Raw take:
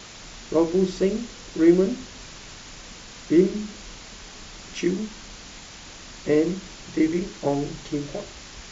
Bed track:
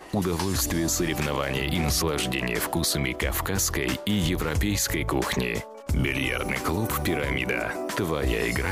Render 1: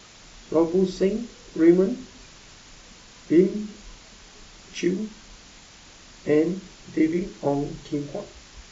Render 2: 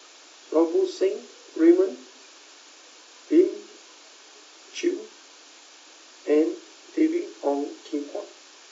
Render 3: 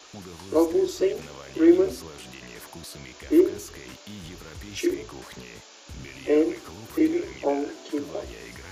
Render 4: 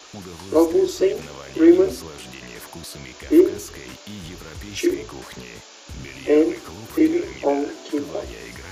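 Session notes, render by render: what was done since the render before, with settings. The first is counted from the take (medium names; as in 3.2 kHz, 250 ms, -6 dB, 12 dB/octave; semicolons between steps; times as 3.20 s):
noise print and reduce 6 dB
steep high-pass 280 Hz 72 dB/octave; band-stop 2 kHz, Q 9.8
add bed track -16.5 dB
trim +4.5 dB; peak limiter -3 dBFS, peak gain reduction 1 dB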